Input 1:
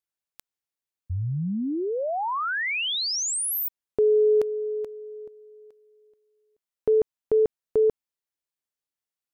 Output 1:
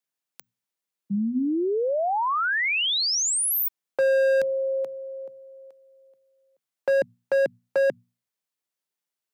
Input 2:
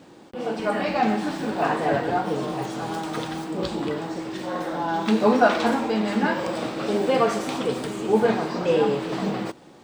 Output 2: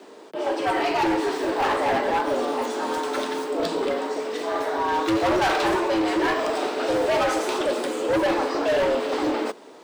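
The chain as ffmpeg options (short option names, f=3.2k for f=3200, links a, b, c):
-af "afreqshift=110,bandreject=f=60:t=h:w=6,bandreject=f=120:t=h:w=6,bandreject=f=180:t=h:w=6,bandreject=f=240:t=h:w=6,volume=21.5dB,asoftclip=hard,volume=-21.5dB,volume=3dB"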